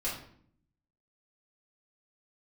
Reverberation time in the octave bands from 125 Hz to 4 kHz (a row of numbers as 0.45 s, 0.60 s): 1.0 s, 0.95 s, 0.65 s, 0.55 s, 0.50 s, 0.45 s